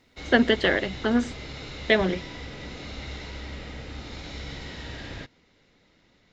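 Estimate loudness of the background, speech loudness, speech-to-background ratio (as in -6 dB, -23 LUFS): -38.0 LUFS, -23.5 LUFS, 14.5 dB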